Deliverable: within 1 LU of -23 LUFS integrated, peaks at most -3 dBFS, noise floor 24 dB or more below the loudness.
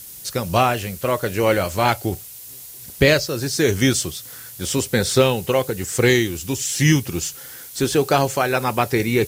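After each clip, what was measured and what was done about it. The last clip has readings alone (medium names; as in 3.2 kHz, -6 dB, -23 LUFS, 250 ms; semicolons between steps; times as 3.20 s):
noise floor -39 dBFS; noise floor target -44 dBFS; loudness -20.0 LUFS; peak level -2.5 dBFS; loudness target -23.0 LUFS
-> noise print and reduce 6 dB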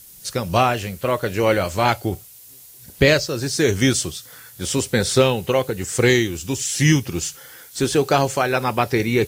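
noise floor -44 dBFS; loudness -20.0 LUFS; peak level -2.5 dBFS; loudness target -23.0 LUFS
-> trim -3 dB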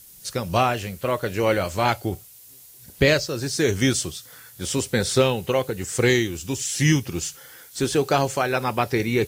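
loudness -23.0 LUFS; peak level -5.5 dBFS; noise floor -47 dBFS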